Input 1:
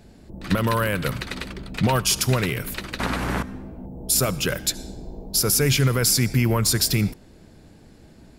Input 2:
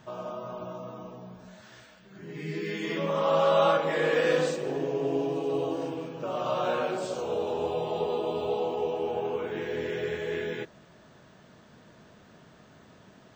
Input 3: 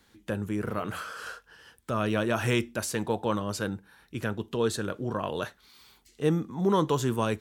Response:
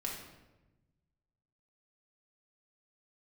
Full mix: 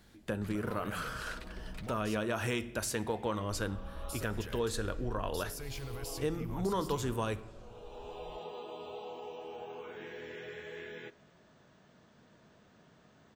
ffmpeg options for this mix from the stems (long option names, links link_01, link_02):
-filter_complex "[0:a]alimiter=limit=-19dB:level=0:latency=1,volume=-15.5dB,asplit=3[link_01][link_02][link_03];[link_01]atrim=end=2.17,asetpts=PTS-STARTPTS,afade=type=out:start_time=2.166:duration=0.004:curve=hsin[link_04];[link_02]atrim=start=2.17:end=3.49,asetpts=PTS-STARTPTS,volume=0[link_05];[link_03]atrim=start=3.49,asetpts=PTS-STARTPTS,afade=type=in:duration=0.004:curve=hsin[link_06];[link_04][link_05][link_06]concat=n=3:v=0:a=1[link_07];[1:a]acrossover=split=870|3100[link_08][link_09][link_10];[link_08]acompressor=threshold=-38dB:ratio=4[link_11];[link_09]acompressor=threshold=-38dB:ratio=4[link_12];[link_10]acompressor=threshold=-53dB:ratio=4[link_13];[link_11][link_12][link_13]amix=inputs=3:normalize=0,adelay=450,volume=-8.5dB,asplit=2[link_14][link_15];[link_15]volume=-18dB[link_16];[2:a]volume=-2.5dB,asplit=3[link_17][link_18][link_19];[link_18]volume=-17dB[link_20];[link_19]apad=whole_len=608855[link_21];[link_14][link_21]sidechaincompress=threshold=-45dB:ratio=8:attack=26:release=618[link_22];[link_07][link_17]amix=inputs=2:normalize=0,asubboost=boost=11.5:cutoff=51,acompressor=threshold=-31dB:ratio=6,volume=0dB[link_23];[3:a]atrim=start_sample=2205[link_24];[link_16][link_20]amix=inputs=2:normalize=0[link_25];[link_25][link_24]afir=irnorm=-1:irlink=0[link_26];[link_22][link_23][link_26]amix=inputs=3:normalize=0"